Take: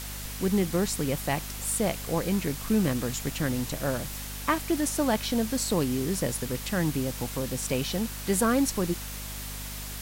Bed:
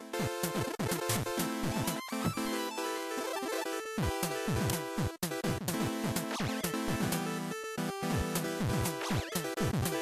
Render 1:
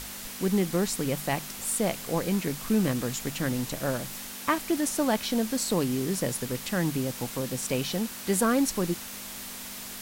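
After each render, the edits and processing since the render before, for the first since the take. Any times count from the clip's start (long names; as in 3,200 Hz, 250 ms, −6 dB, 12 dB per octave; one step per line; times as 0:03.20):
mains-hum notches 50/100/150 Hz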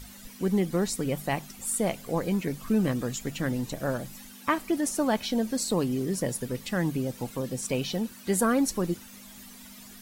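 broadband denoise 13 dB, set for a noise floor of −40 dBFS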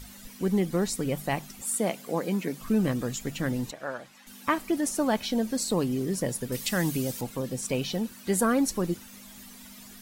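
0:01.62–0:02.61: high-pass filter 170 Hz 24 dB per octave
0:03.71–0:04.27: resonant band-pass 1,500 Hz, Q 0.65
0:06.52–0:07.21: high-shelf EQ 3,100 Hz +12 dB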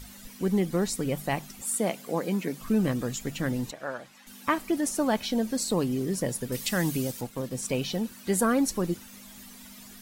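0:07.07–0:07.55: mu-law and A-law mismatch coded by A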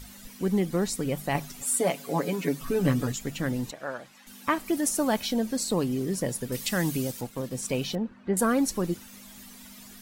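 0:01.34–0:03.12: comb filter 7.1 ms, depth 98%
0:04.66–0:05.33: high-shelf EQ 6,800 Hz +7 dB
0:07.95–0:08.37: low-pass filter 1,500 Hz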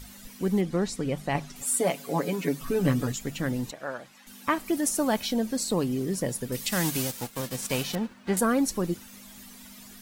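0:00.61–0:01.56: high-frequency loss of the air 51 metres
0:06.71–0:08.38: spectral envelope flattened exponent 0.6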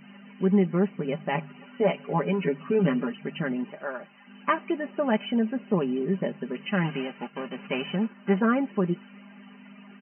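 brick-wall band-pass 140–3,100 Hz
comb filter 5 ms, depth 65%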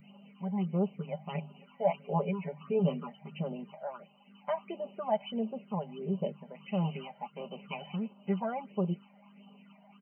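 all-pass phaser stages 8, 1.5 Hz, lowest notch 340–1,900 Hz
phaser with its sweep stopped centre 710 Hz, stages 4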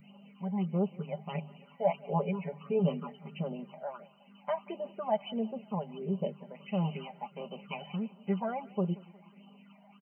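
repeating echo 181 ms, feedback 49%, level −23 dB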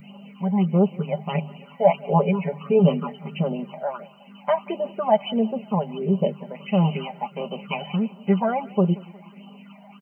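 level +11.5 dB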